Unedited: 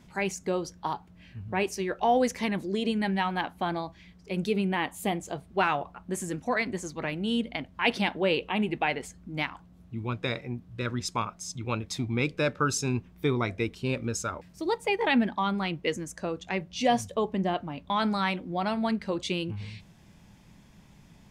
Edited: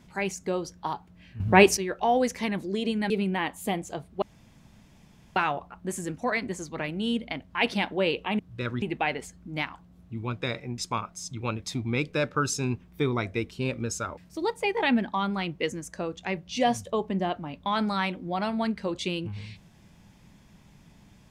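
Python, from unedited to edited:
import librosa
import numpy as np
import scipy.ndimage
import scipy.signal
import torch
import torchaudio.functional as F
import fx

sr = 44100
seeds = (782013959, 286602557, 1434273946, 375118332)

y = fx.edit(x, sr, fx.clip_gain(start_s=1.4, length_s=0.37, db=12.0),
    fx.cut(start_s=3.1, length_s=1.38),
    fx.insert_room_tone(at_s=5.6, length_s=1.14),
    fx.move(start_s=10.59, length_s=0.43, to_s=8.63), tone=tone)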